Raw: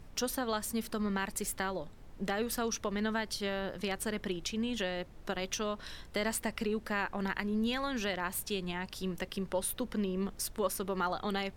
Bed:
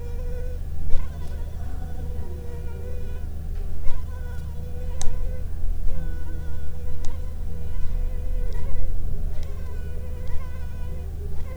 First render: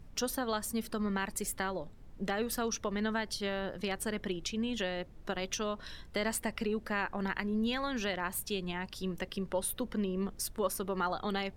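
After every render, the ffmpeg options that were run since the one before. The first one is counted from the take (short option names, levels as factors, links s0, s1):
-af "afftdn=nr=6:nf=-52"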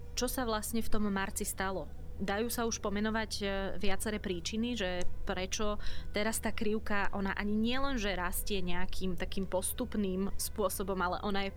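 -filter_complex "[1:a]volume=0.168[s0];[0:a][s0]amix=inputs=2:normalize=0"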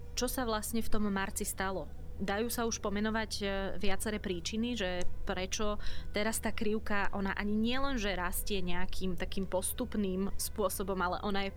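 -af anull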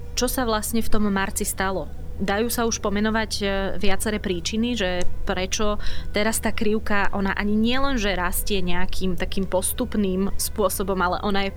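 -af "volume=3.55"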